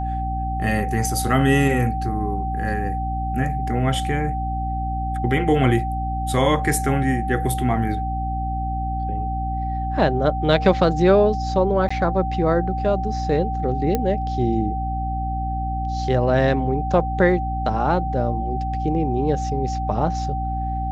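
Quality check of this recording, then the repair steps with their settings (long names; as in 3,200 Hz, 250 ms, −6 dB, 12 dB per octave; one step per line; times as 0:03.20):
mains hum 60 Hz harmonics 5 −26 dBFS
whistle 770 Hz −26 dBFS
0:11.89–0:11.90: drop-out 15 ms
0:13.95: click −8 dBFS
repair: click removal
hum removal 60 Hz, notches 5
notch filter 770 Hz, Q 30
repair the gap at 0:11.89, 15 ms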